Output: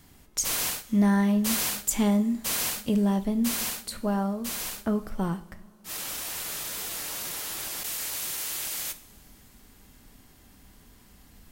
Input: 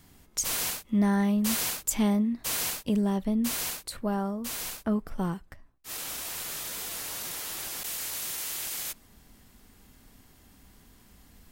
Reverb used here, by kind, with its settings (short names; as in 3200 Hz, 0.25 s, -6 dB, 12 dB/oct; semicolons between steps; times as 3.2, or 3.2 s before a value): two-slope reverb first 0.51 s, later 4.4 s, from -20 dB, DRR 11 dB; gain +1.5 dB